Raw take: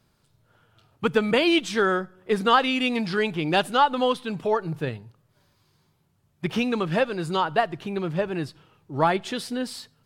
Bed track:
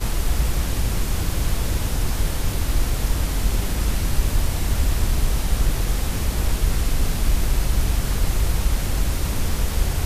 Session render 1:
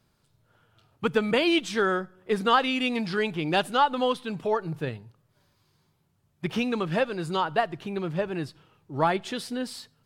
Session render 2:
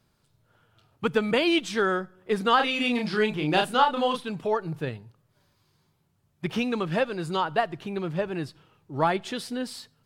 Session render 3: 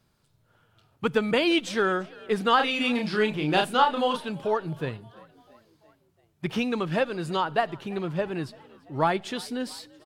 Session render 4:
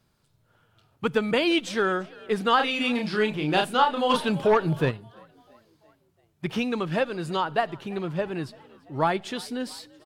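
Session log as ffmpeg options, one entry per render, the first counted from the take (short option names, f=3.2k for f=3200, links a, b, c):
-af "volume=-2.5dB"
-filter_complex "[0:a]asettb=1/sr,asplit=3[a][b][c];[a]atrim=end=2.564[d];[b]atrim=start=2.56:end=4.29,asetpts=PTS-STARTPTS,afade=t=in:d=0.004:c=qsin,afade=t=out:st=1.726:d=0.004:c=qsin,asplit=2[e][f];[f]adelay=33,volume=-4dB[g];[e][g]amix=inputs=2:normalize=0,atrim=end_sample=76293[h];[c]atrim=start=4.286[i];[d][h]acrossfade=d=0.004:c1=hsin:c2=qsin[j];[j][i]acrossfade=d=0.004:c1=qsin:c2=hsin"
-filter_complex "[0:a]asplit=5[a][b][c][d][e];[b]adelay=339,afreqshift=55,volume=-23.5dB[f];[c]adelay=678,afreqshift=110,volume=-27.8dB[g];[d]adelay=1017,afreqshift=165,volume=-32.1dB[h];[e]adelay=1356,afreqshift=220,volume=-36.4dB[i];[a][f][g][h][i]amix=inputs=5:normalize=0"
-filter_complex "[0:a]asplit=3[a][b][c];[a]afade=t=out:st=4.09:d=0.02[d];[b]aeval=exprs='0.211*sin(PI/2*1.58*val(0)/0.211)':c=same,afade=t=in:st=4.09:d=0.02,afade=t=out:st=4.9:d=0.02[e];[c]afade=t=in:st=4.9:d=0.02[f];[d][e][f]amix=inputs=3:normalize=0"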